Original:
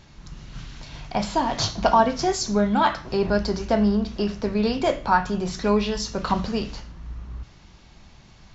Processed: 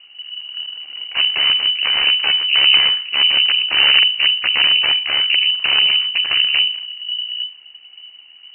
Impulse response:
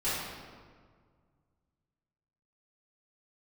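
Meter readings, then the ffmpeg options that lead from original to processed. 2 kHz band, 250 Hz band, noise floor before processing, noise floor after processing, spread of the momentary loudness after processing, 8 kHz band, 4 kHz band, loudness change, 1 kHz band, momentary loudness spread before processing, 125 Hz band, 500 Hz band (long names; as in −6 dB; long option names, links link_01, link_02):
+15.5 dB, below −20 dB, −50 dBFS, −44 dBFS, 16 LU, can't be measured, +23.5 dB, +10.0 dB, −9.0 dB, 20 LU, below −15 dB, −15.5 dB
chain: -filter_complex "[0:a]aeval=exprs='0.531*(cos(1*acos(clip(val(0)/0.531,-1,1)))-cos(1*PI/2))+0.266*(cos(2*acos(clip(val(0)/0.531,-1,1)))-cos(2*PI/2))+0.106*(cos(4*acos(clip(val(0)/0.531,-1,1)))-cos(4*PI/2))+0.15*(cos(7*acos(clip(val(0)/0.531,-1,1)))-cos(7*PI/2))+0.168*(cos(8*acos(clip(val(0)/0.531,-1,1)))-cos(8*PI/2))':channel_layout=same,aeval=exprs='(mod(3.55*val(0)+1,2)-1)/3.55':channel_layout=same,tremolo=f=70:d=0.75,tiltshelf=frequency=680:gain=7.5,asplit=2[link_01][link_02];[1:a]atrim=start_sample=2205,asetrate=79380,aresample=44100[link_03];[link_02][link_03]afir=irnorm=-1:irlink=0,volume=-25.5dB[link_04];[link_01][link_04]amix=inputs=2:normalize=0,lowpass=frequency=2600:width_type=q:width=0.5098,lowpass=frequency=2600:width_type=q:width=0.6013,lowpass=frequency=2600:width_type=q:width=0.9,lowpass=frequency=2600:width_type=q:width=2.563,afreqshift=-3000,volume=4dB"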